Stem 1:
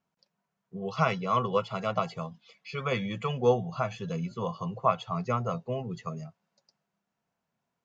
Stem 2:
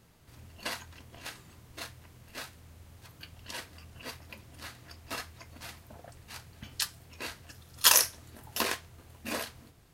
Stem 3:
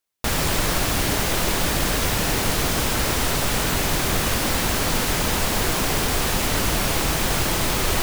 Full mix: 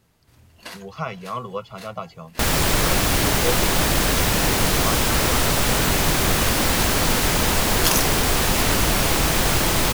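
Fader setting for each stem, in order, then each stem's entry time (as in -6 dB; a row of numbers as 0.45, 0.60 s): -3.0, -1.0, +2.5 dB; 0.00, 0.00, 2.15 s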